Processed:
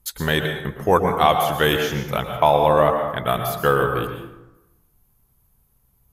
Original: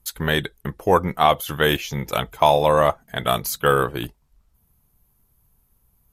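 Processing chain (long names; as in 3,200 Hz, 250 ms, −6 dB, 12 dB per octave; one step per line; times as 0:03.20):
0:01.99–0:04.04: parametric band 6,600 Hz −11.5 dB 1.5 octaves
dense smooth reverb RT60 0.96 s, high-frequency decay 0.55×, pre-delay 100 ms, DRR 5 dB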